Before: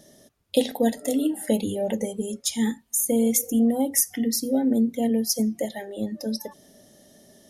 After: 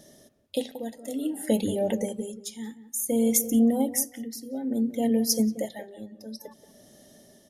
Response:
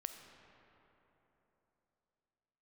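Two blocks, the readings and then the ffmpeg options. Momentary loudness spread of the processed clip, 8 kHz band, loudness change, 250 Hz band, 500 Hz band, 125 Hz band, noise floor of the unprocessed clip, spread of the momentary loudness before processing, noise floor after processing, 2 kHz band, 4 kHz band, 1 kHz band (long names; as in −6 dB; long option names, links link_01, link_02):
18 LU, −3.5 dB, −2.5 dB, −3.0 dB, −3.0 dB, can't be measured, −59 dBFS, 10 LU, −58 dBFS, −5.5 dB, −4.5 dB, −4.0 dB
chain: -filter_complex "[0:a]tremolo=f=0.57:d=0.79,asplit=2[link_01][link_02];[link_02]adelay=181,lowpass=frequency=1200:poles=1,volume=-12.5dB,asplit=2[link_03][link_04];[link_04]adelay=181,lowpass=frequency=1200:poles=1,volume=0.18[link_05];[link_01][link_03][link_05]amix=inputs=3:normalize=0"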